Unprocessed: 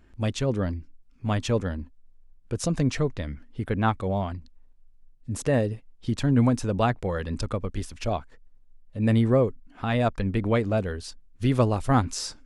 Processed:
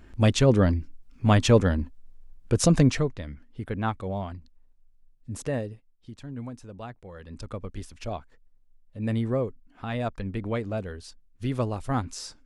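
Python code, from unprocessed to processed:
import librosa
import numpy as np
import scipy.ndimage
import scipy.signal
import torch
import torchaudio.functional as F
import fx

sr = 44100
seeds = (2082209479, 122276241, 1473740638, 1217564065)

y = fx.gain(x, sr, db=fx.line((2.77, 6.5), (3.18, -4.5), (5.44, -4.5), (6.12, -16.5), (7.06, -16.5), (7.59, -6.0)))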